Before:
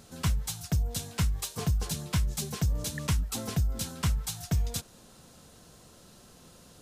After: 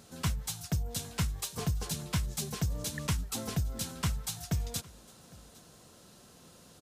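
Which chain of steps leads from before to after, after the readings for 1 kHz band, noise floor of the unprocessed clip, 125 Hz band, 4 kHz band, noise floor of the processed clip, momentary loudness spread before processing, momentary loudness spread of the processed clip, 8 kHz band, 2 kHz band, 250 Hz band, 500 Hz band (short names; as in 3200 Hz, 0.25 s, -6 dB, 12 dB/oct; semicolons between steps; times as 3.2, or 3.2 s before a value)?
-1.5 dB, -55 dBFS, -4.0 dB, -1.5 dB, -57 dBFS, 3 LU, 20 LU, -1.5 dB, -1.5 dB, -2.0 dB, -1.5 dB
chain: HPF 78 Hz 6 dB/oct; echo 0.807 s -23 dB; gain -1.5 dB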